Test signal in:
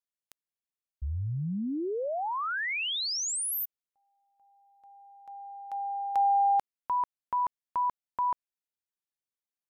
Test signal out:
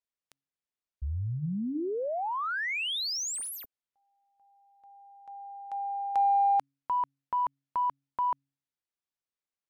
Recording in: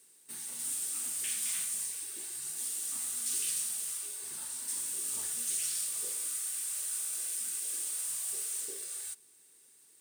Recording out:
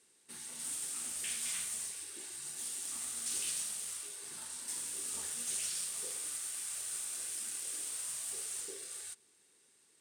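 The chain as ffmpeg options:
-af "bandreject=f=138.4:t=h:w=4,bandreject=f=276.8:t=h:w=4,adynamicsmooth=sensitivity=8:basefreq=7400"

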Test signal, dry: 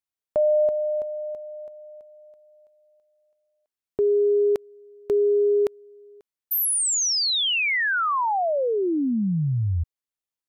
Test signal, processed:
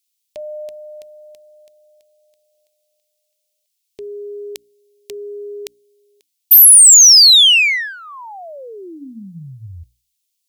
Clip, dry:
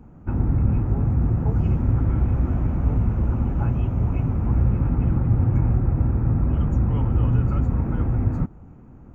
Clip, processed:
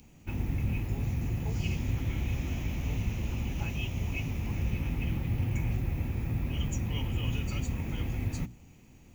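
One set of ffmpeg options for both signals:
-af "aexciter=amount=13.2:drive=8.1:freq=2200,bandreject=f=60:t=h:w=6,bandreject=f=120:t=h:w=6,bandreject=f=180:t=h:w=6,bandreject=f=240:t=h:w=6,bandreject=f=300:t=h:w=6,volume=0.316"

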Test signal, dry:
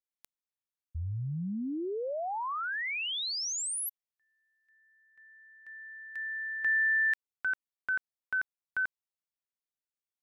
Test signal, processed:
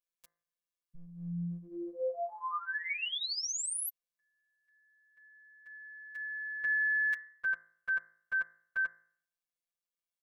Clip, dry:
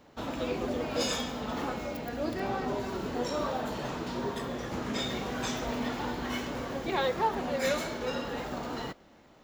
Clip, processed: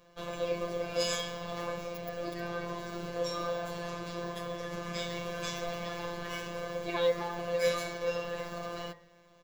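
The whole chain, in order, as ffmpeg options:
-af "afftfilt=real='hypot(re,im)*cos(PI*b)':imag='0':win_size=1024:overlap=0.75,aecho=1:1:1.8:0.63,bandreject=f=54.12:t=h:w=4,bandreject=f=108.24:t=h:w=4,bandreject=f=162.36:t=h:w=4,bandreject=f=216.48:t=h:w=4,bandreject=f=270.6:t=h:w=4,bandreject=f=324.72:t=h:w=4,bandreject=f=378.84:t=h:w=4,bandreject=f=432.96:t=h:w=4,bandreject=f=487.08:t=h:w=4,bandreject=f=541.2:t=h:w=4,bandreject=f=595.32:t=h:w=4,bandreject=f=649.44:t=h:w=4,bandreject=f=703.56:t=h:w=4,bandreject=f=757.68:t=h:w=4,bandreject=f=811.8:t=h:w=4,bandreject=f=865.92:t=h:w=4,bandreject=f=920.04:t=h:w=4,bandreject=f=974.16:t=h:w=4,bandreject=f=1028.28:t=h:w=4,bandreject=f=1082.4:t=h:w=4,bandreject=f=1136.52:t=h:w=4,bandreject=f=1190.64:t=h:w=4,bandreject=f=1244.76:t=h:w=4,bandreject=f=1298.88:t=h:w=4,bandreject=f=1353:t=h:w=4,bandreject=f=1407.12:t=h:w=4,bandreject=f=1461.24:t=h:w=4,bandreject=f=1515.36:t=h:w=4,bandreject=f=1569.48:t=h:w=4,bandreject=f=1623.6:t=h:w=4,bandreject=f=1677.72:t=h:w=4,bandreject=f=1731.84:t=h:w=4,bandreject=f=1785.96:t=h:w=4,bandreject=f=1840.08:t=h:w=4,bandreject=f=1894.2:t=h:w=4,bandreject=f=1948.32:t=h:w=4,bandreject=f=2002.44:t=h:w=4,bandreject=f=2056.56:t=h:w=4,bandreject=f=2110.68:t=h:w=4"

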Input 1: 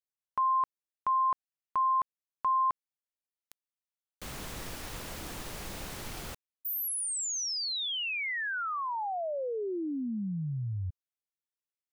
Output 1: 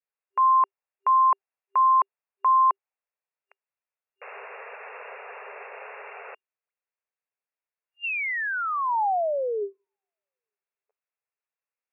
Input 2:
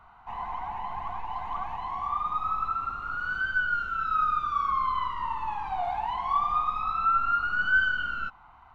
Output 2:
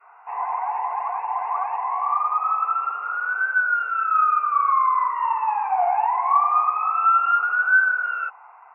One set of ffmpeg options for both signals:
-af "acontrast=32,adynamicequalizer=threshold=0.02:dfrequency=820:dqfactor=1.5:tfrequency=820:tqfactor=1.5:attack=5:release=100:ratio=0.375:range=2.5:mode=boostabove:tftype=bell,afftfilt=real='re*between(b*sr/4096,390,2800)':imag='im*between(b*sr/4096,390,2800)':win_size=4096:overlap=0.75"

